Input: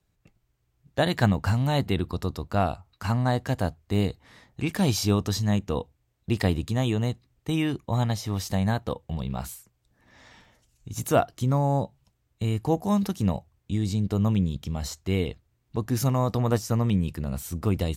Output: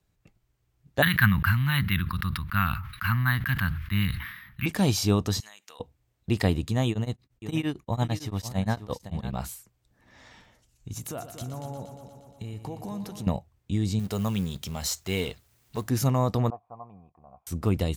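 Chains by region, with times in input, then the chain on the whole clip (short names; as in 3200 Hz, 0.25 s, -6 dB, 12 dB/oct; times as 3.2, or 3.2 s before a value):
1.02–4.66 EQ curve 190 Hz 0 dB, 300 Hz -14 dB, 450 Hz -27 dB, 700 Hz -23 dB, 1100 Hz +3 dB, 1600 Hz +11 dB, 3500 Hz +3 dB, 5700 Hz -9 dB, 11000 Hz -25 dB + careless resampling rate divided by 3×, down none, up hold + sustainer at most 64 dB/s
5.4–5.8 HPF 1400 Hz + high shelf 4900 Hz +6.5 dB + compressor 10:1, threshold -44 dBFS
6.89–9.33 echo 0.529 s -12 dB + beating tremolo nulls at 8.8 Hz
10.97–13.27 compressor, threshold -33 dBFS + multi-head echo 0.118 s, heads first and second, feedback 61%, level -12 dB
13.99–15.89 G.711 law mismatch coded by mu + tilt +2 dB/oct + notch 310 Hz, Q 7.9
16.5–17.47 G.711 law mismatch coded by A + vocal tract filter a
whole clip: dry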